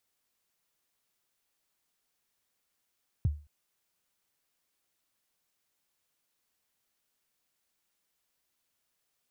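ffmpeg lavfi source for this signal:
-f lavfi -i "aevalsrc='0.1*pow(10,-3*t/0.33)*sin(2*PI*(140*0.025/log(74/140)*(exp(log(74/140)*min(t,0.025)/0.025)-1)+74*max(t-0.025,0)))':d=0.22:s=44100"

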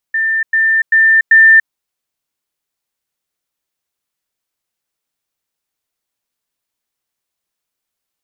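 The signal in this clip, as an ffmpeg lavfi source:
-f lavfi -i "aevalsrc='pow(10,(-12+3*floor(t/0.39))/20)*sin(2*PI*1790*t)*clip(min(mod(t,0.39),0.29-mod(t,0.39))/0.005,0,1)':d=1.56:s=44100"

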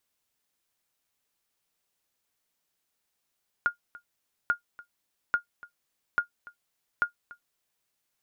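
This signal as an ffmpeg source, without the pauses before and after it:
-f lavfi -i "aevalsrc='0.178*(sin(2*PI*1420*mod(t,0.84))*exp(-6.91*mod(t,0.84)/0.11)+0.0891*sin(2*PI*1420*max(mod(t,0.84)-0.29,0))*exp(-6.91*max(mod(t,0.84)-0.29,0)/0.11))':d=4.2:s=44100"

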